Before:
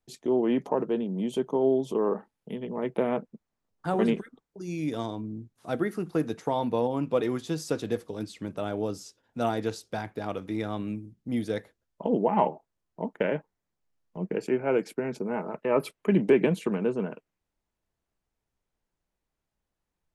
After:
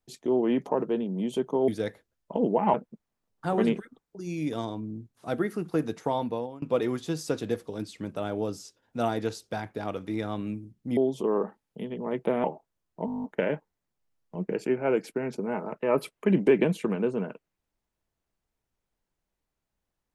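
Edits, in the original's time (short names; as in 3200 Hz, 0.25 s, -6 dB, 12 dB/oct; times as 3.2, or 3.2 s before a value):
1.68–3.15 swap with 11.38–12.44
6.55–7.03 fade out, to -23 dB
13.06 stutter 0.02 s, 10 plays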